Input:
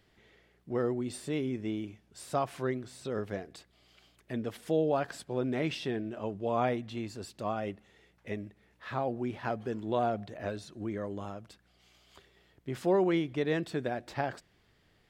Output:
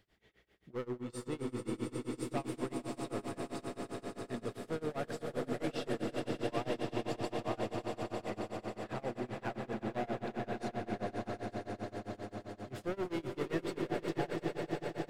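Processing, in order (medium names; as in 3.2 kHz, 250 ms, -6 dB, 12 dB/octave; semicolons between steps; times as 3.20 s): overload inside the chain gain 29 dB; echo with a slow build-up 90 ms, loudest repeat 8, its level -8.5 dB; tremolo 7.6 Hz, depth 96%; trim -3 dB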